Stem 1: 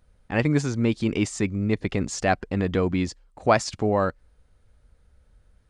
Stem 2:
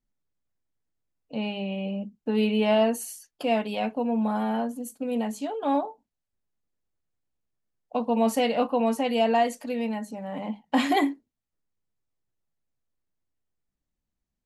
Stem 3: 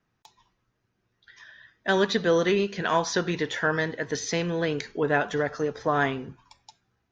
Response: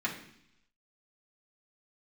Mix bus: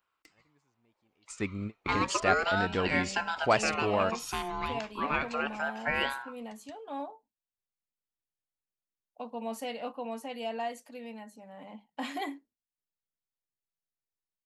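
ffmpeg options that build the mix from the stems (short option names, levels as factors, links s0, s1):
-filter_complex "[0:a]volume=0.631[s0];[1:a]adelay=1250,volume=0.299[s1];[2:a]equalizer=f=5000:w=2.9:g=-8,aeval=exprs='val(0)*sin(2*PI*880*n/s+880*0.4/0.33*sin(2*PI*0.33*n/s))':c=same,volume=0.794,asplit=2[s2][s3];[s3]apad=whole_len=250993[s4];[s0][s4]sidechaingate=range=0.00891:threshold=0.00158:ratio=16:detection=peak[s5];[s5][s1][s2]amix=inputs=3:normalize=0,lowshelf=f=470:g=-6.5"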